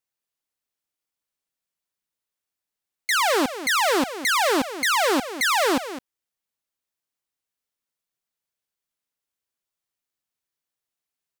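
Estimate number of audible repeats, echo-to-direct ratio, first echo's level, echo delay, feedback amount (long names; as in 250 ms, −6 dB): 1, −12.5 dB, −12.5 dB, 209 ms, repeats not evenly spaced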